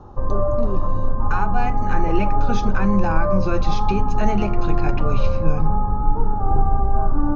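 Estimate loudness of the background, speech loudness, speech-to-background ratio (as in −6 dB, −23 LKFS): −24.0 LKFS, −26.0 LKFS, −2.0 dB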